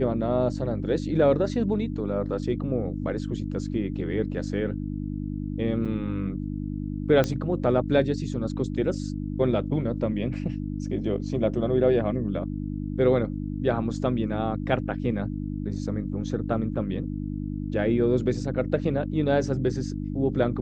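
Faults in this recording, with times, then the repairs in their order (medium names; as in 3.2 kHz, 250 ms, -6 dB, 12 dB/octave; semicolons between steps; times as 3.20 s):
hum 50 Hz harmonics 6 -31 dBFS
5.85–5.86 s: dropout 6.6 ms
7.24 s: pop -12 dBFS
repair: de-click; de-hum 50 Hz, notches 6; interpolate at 5.85 s, 6.6 ms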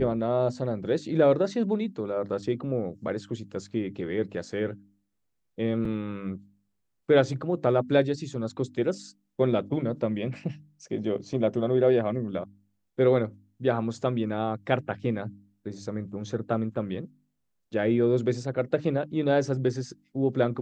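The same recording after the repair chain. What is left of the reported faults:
nothing left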